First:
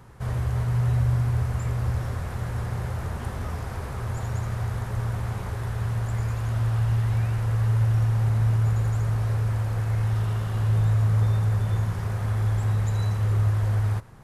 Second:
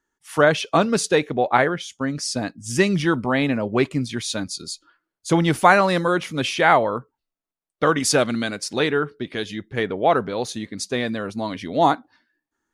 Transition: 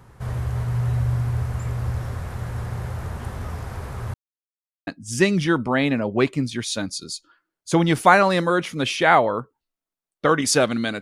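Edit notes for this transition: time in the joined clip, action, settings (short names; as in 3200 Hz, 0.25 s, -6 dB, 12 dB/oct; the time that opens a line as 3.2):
first
4.14–4.87 mute
4.87 switch to second from 2.45 s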